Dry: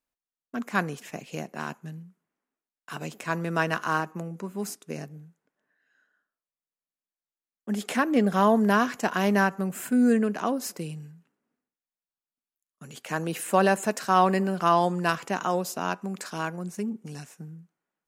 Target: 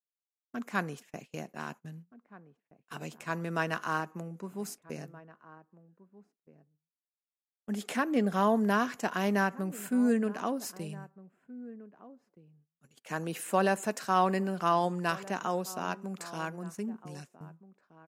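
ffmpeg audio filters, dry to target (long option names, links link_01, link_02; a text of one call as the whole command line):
ffmpeg -i in.wav -filter_complex "[0:a]agate=range=-21dB:threshold=-41dB:ratio=16:detection=peak,asplit=2[link_01][link_02];[link_02]adelay=1574,volume=-18dB,highshelf=frequency=4000:gain=-35.4[link_03];[link_01][link_03]amix=inputs=2:normalize=0,volume=-5.5dB" out.wav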